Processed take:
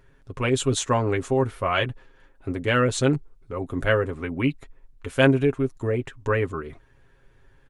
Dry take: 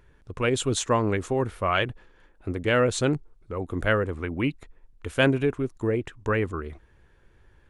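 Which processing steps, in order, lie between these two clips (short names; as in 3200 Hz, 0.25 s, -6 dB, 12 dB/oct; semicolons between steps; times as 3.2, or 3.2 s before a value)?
comb 7.4 ms, depth 59%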